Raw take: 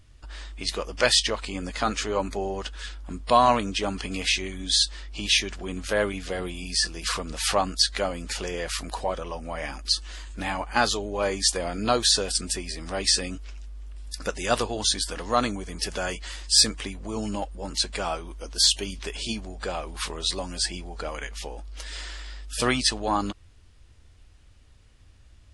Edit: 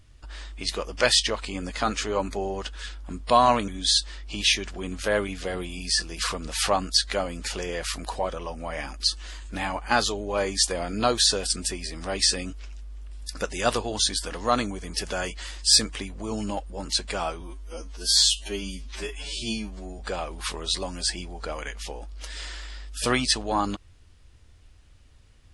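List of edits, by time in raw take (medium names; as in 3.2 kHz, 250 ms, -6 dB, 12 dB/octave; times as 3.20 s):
3.68–4.53 s: delete
18.26–19.55 s: stretch 2×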